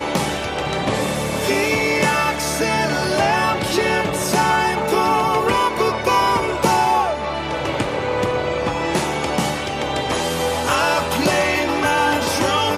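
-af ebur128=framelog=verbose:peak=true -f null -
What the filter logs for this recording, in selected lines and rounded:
Integrated loudness:
  I:         -18.8 LUFS
  Threshold: -28.8 LUFS
Loudness range:
  LRA:         3.1 LU
  Threshold: -38.8 LUFS
  LRA low:   -20.8 LUFS
  LRA high:  -17.6 LUFS
True peak:
  Peak:       -3.6 dBFS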